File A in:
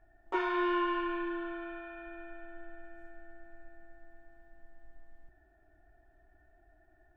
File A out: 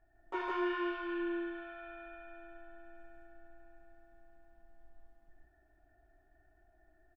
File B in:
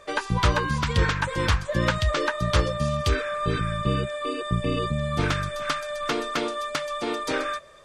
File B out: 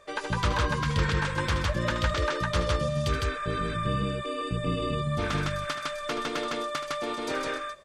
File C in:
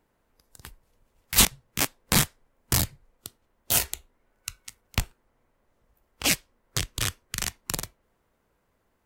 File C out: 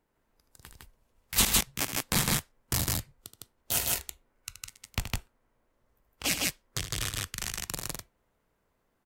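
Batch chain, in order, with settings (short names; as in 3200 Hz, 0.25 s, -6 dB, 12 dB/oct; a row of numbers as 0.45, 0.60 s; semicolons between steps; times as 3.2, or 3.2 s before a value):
loudspeakers at several distances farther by 26 m -10 dB, 54 m -1 dB; gain -6 dB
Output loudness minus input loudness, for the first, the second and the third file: -4.0, -3.0, -4.0 LU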